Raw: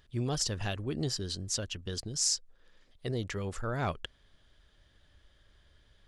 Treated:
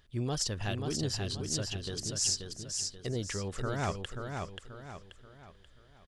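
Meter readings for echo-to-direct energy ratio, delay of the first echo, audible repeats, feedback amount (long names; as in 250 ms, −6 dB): −4.0 dB, 533 ms, 4, 40%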